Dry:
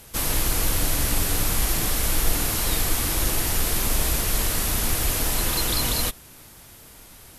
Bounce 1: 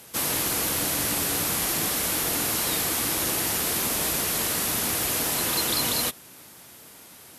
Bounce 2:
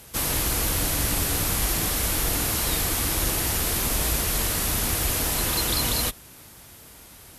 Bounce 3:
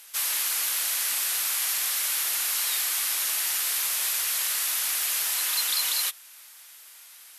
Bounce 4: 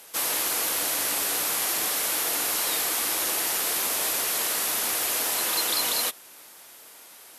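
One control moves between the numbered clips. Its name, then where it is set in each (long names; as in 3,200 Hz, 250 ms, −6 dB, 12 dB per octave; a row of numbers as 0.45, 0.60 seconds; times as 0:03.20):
high-pass filter, corner frequency: 160, 40, 1,500, 470 Hertz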